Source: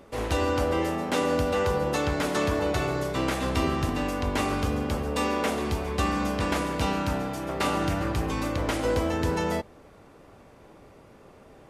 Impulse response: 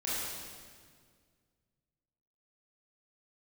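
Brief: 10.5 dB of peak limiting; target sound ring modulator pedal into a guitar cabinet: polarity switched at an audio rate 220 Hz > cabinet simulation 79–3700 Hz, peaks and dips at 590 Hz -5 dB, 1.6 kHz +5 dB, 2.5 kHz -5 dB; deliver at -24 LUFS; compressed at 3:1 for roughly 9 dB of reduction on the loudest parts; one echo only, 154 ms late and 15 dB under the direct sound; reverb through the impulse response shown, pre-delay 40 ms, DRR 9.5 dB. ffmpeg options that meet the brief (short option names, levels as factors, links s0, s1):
-filter_complex "[0:a]acompressor=threshold=0.02:ratio=3,alimiter=level_in=2.11:limit=0.0631:level=0:latency=1,volume=0.473,aecho=1:1:154:0.178,asplit=2[s0][s1];[1:a]atrim=start_sample=2205,adelay=40[s2];[s1][s2]afir=irnorm=-1:irlink=0,volume=0.168[s3];[s0][s3]amix=inputs=2:normalize=0,aeval=exprs='val(0)*sgn(sin(2*PI*220*n/s))':c=same,highpass=79,equalizer=f=590:t=q:w=4:g=-5,equalizer=f=1600:t=q:w=4:g=5,equalizer=f=2500:t=q:w=4:g=-5,lowpass=f=3700:w=0.5412,lowpass=f=3700:w=1.3066,volume=5.96"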